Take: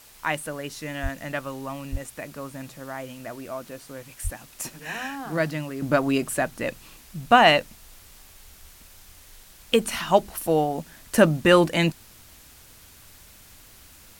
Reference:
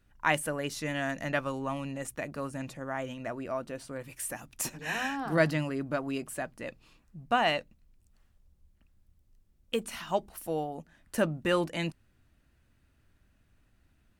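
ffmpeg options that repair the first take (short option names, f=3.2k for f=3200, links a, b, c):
-filter_complex "[0:a]asplit=3[a][b][c];[a]afade=t=out:st=1.02:d=0.02[d];[b]highpass=f=140:w=0.5412,highpass=f=140:w=1.3066,afade=t=in:st=1.02:d=0.02,afade=t=out:st=1.14:d=0.02[e];[c]afade=t=in:st=1.14:d=0.02[f];[d][e][f]amix=inputs=3:normalize=0,asplit=3[g][h][i];[g]afade=t=out:st=1.91:d=0.02[j];[h]highpass=f=140:w=0.5412,highpass=f=140:w=1.3066,afade=t=in:st=1.91:d=0.02,afade=t=out:st=2.03:d=0.02[k];[i]afade=t=in:st=2.03:d=0.02[l];[j][k][l]amix=inputs=3:normalize=0,asplit=3[m][n][o];[m]afade=t=out:st=4.23:d=0.02[p];[n]highpass=f=140:w=0.5412,highpass=f=140:w=1.3066,afade=t=in:st=4.23:d=0.02,afade=t=out:st=4.35:d=0.02[q];[o]afade=t=in:st=4.35:d=0.02[r];[p][q][r]amix=inputs=3:normalize=0,afwtdn=0.0032,asetnsamples=n=441:p=0,asendcmd='5.82 volume volume -11dB',volume=0dB"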